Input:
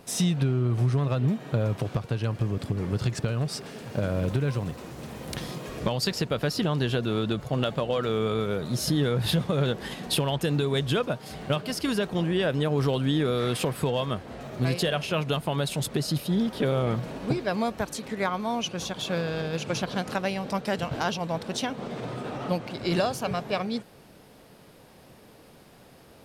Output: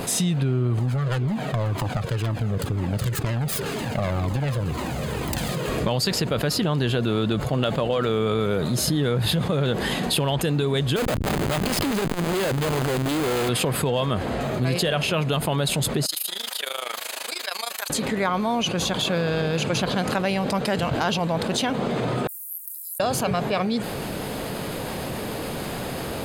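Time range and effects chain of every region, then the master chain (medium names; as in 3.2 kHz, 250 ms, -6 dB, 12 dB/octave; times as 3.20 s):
0.79–5.68 s: self-modulated delay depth 0.55 ms + Shepard-style flanger falling 2 Hz
10.96–13.49 s: bass shelf 120 Hz -7.5 dB + Schmitt trigger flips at -38.5 dBFS + transformer saturation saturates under 200 Hz
16.06–17.90 s: high-pass 550 Hz + AM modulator 26 Hz, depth 85% + differentiator
22.27–23.00 s: inverse Chebyshev high-pass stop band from 2.8 kHz, stop band 80 dB + differentiator
whole clip: band-stop 5.6 kHz, Q 6.7; level flattener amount 70%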